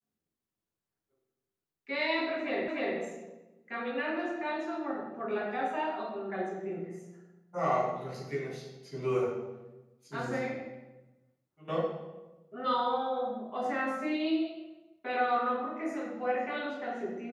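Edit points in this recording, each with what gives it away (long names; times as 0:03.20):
0:02.68: the same again, the last 0.3 s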